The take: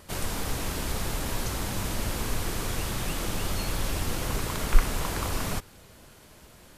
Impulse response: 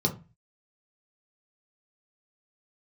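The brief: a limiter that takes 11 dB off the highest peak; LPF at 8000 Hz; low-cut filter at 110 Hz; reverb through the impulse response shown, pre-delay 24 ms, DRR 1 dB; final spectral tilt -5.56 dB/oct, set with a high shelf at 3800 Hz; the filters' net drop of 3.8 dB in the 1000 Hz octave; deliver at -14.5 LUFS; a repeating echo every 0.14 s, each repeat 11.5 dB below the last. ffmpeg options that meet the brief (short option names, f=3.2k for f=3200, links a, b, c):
-filter_complex "[0:a]highpass=110,lowpass=8k,equalizer=f=1k:t=o:g=-4.5,highshelf=f=3.8k:g=-3.5,alimiter=level_in=3.5dB:limit=-24dB:level=0:latency=1,volume=-3.5dB,aecho=1:1:140|280|420:0.266|0.0718|0.0194,asplit=2[a][b];[1:a]atrim=start_sample=2205,adelay=24[c];[b][c]afir=irnorm=-1:irlink=0,volume=-10dB[d];[a][d]amix=inputs=2:normalize=0,volume=16dB"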